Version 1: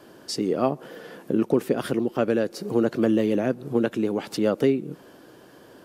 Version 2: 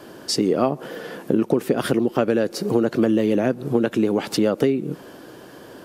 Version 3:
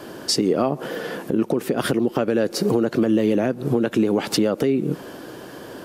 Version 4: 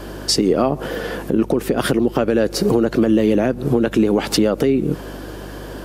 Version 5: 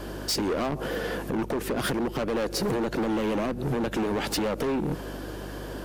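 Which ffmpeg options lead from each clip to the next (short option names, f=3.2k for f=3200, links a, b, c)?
-af "acompressor=threshold=-22dB:ratio=6,volume=7.5dB"
-af "alimiter=limit=-14.5dB:level=0:latency=1:release=190,volume=4.5dB"
-af "aeval=exprs='val(0)+0.0126*(sin(2*PI*50*n/s)+sin(2*PI*2*50*n/s)/2+sin(2*PI*3*50*n/s)/3+sin(2*PI*4*50*n/s)/4+sin(2*PI*5*50*n/s)/5)':c=same,volume=3.5dB"
-af "asoftclip=type=hard:threshold=-19.5dB,volume=-4.5dB"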